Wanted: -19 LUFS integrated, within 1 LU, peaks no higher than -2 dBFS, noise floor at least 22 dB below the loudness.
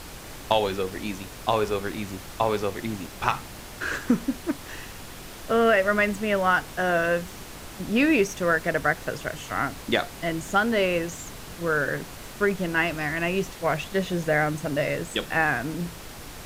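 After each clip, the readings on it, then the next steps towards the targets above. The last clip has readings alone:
noise floor -41 dBFS; noise floor target -48 dBFS; loudness -25.5 LUFS; peak level -5.0 dBFS; loudness target -19.0 LUFS
-> noise print and reduce 7 dB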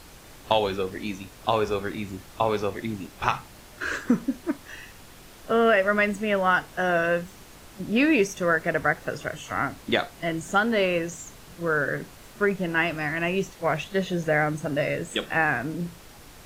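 noise floor -48 dBFS; loudness -25.5 LUFS; peak level -5.0 dBFS; loudness target -19.0 LUFS
-> trim +6.5 dB; peak limiter -2 dBFS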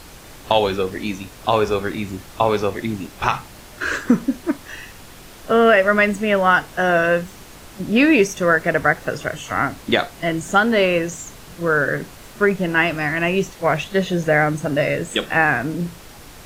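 loudness -19.0 LUFS; peak level -2.0 dBFS; noise floor -42 dBFS

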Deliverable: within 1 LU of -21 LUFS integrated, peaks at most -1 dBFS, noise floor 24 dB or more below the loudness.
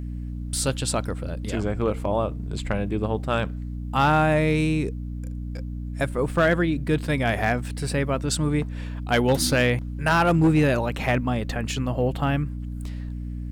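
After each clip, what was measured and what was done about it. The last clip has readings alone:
clipped samples 0.5%; clipping level -13.0 dBFS; hum 60 Hz; highest harmonic 300 Hz; hum level -29 dBFS; loudness -24.5 LUFS; peak level -13.0 dBFS; loudness target -21.0 LUFS
-> clip repair -13 dBFS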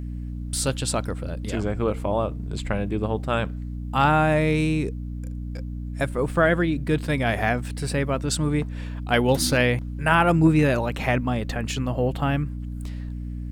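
clipped samples 0.0%; hum 60 Hz; highest harmonic 300 Hz; hum level -29 dBFS
-> de-hum 60 Hz, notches 5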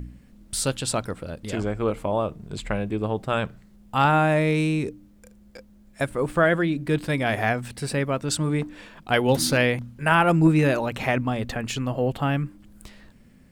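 hum not found; loudness -24.0 LUFS; peak level -5.5 dBFS; loudness target -21.0 LUFS
-> trim +3 dB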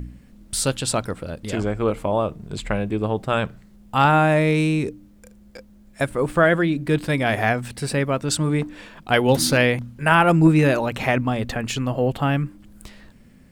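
loudness -21.0 LUFS; peak level -2.5 dBFS; noise floor -50 dBFS

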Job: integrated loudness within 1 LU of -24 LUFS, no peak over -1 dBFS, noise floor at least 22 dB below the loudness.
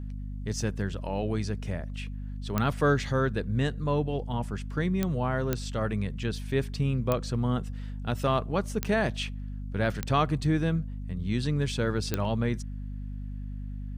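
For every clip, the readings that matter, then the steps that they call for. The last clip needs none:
clicks found 7; hum 50 Hz; highest harmonic 250 Hz; hum level -33 dBFS; loudness -30.0 LUFS; peak level -11.5 dBFS; loudness target -24.0 LUFS
-> de-click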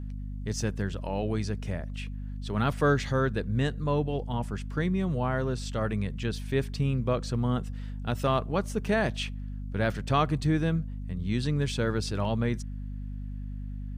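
clicks found 0; hum 50 Hz; highest harmonic 250 Hz; hum level -33 dBFS
-> hum notches 50/100/150/200/250 Hz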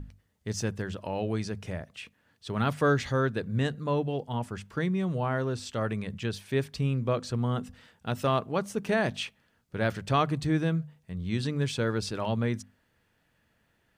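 hum not found; loudness -30.5 LUFS; peak level -13.0 dBFS; loudness target -24.0 LUFS
-> trim +6.5 dB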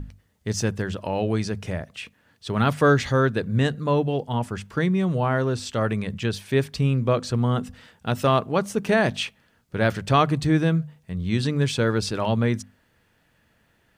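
loudness -24.0 LUFS; peak level -6.5 dBFS; noise floor -65 dBFS

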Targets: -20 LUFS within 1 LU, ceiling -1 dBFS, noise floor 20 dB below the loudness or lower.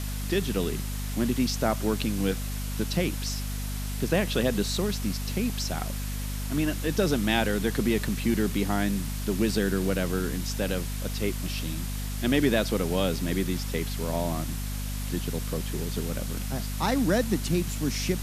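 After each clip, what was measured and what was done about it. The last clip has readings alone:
hum 50 Hz; highest harmonic 250 Hz; hum level -30 dBFS; noise floor -32 dBFS; noise floor target -48 dBFS; loudness -28.0 LUFS; peak level -9.0 dBFS; loudness target -20.0 LUFS
-> de-hum 50 Hz, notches 5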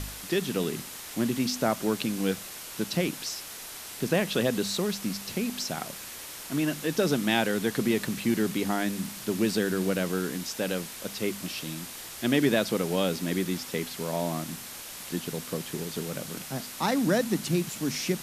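hum not found; noise floor -41 dBFS; noise floor target -50 dBFS
-> noise reduction 9 dB, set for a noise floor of -41 dBFS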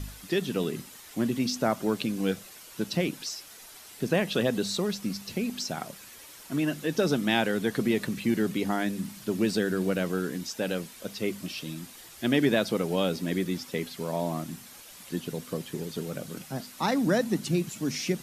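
noise floor -48 dBFS; noise floor target -50 dBFS
-> noise reduction 6 dB, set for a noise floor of -48 dBFS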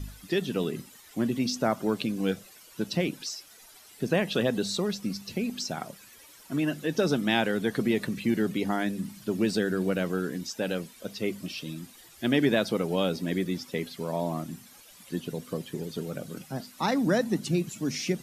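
noise floor -53 dBFS; loudness -29.5 LUFS; peak level -9.5 dBFS; loudness target -20.0 LUFS
-> trim +9.5 dB; peak limiter -1 dBFS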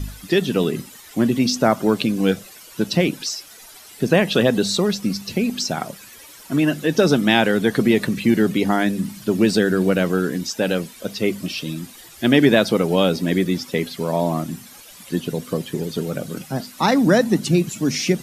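loudness -20.0 LUFS; peak level -1.0 dBFS; noise floor -43 dBFS

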